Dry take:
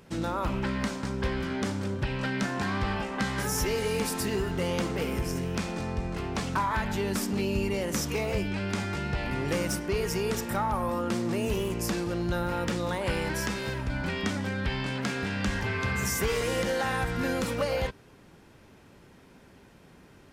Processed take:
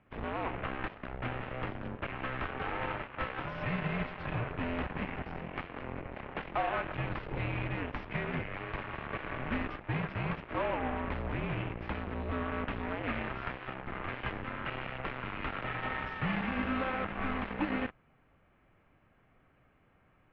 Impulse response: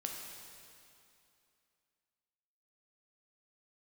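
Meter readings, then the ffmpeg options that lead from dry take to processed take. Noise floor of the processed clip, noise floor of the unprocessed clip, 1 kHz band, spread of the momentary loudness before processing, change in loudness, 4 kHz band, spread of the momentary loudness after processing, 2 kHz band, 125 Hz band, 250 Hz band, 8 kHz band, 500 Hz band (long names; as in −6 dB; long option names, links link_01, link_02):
−67 dBFS, −55 dBFS, −4.0 dB, 4 LU, −6.5 dB, −11.5 dB, 7 LU, −4.0 dB, −6.5 dB, −7.5 dB, below −40 dB, −9.0 dB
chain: -af "aeval=exprs='0.126*(cos(1*acos(clip(val(0)/0.126,-1,1)))-cos(1*PI/2))+0.0282*(cos(7*acos(clip(val(0)/0.126,-1,1)))-cos(7*PI/2))':channel_layout=same,highpass=frequency=270:width_type=q:width=0.5412,highpass=frequency=270:width_type=q:width=1.307,lowpass=frequency=3000:width_type=q:width=0.5176,lowpass=frequency=3000:width_type=q:width=0.7071,lowpass=frequency=3000:width_type=q:width=1.932,afreqshift=-270,volume=-3.5dB"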